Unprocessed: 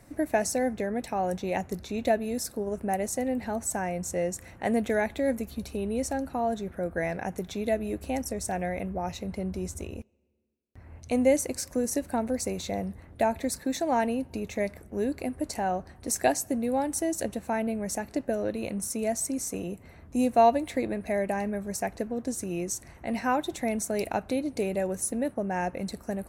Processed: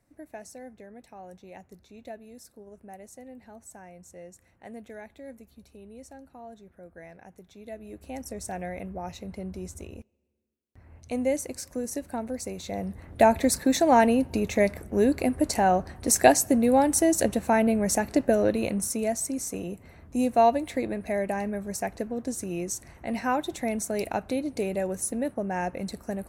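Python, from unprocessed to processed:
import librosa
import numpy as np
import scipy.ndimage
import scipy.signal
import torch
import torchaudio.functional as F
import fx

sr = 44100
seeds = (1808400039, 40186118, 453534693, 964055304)

y = fx.gain(x, sr, db=fx.line((7.51, -16.5), (8.36, -4.0), (12.59, -4.0), (13.24, 7.0), (18.46, 7.0), (19.2, 0.0)))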